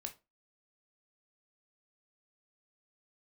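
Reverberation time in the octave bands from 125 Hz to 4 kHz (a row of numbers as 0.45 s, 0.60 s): 0.25 s, 0.30 s, 0.30 s, 0.25 s, 0.20 s, 0.20 s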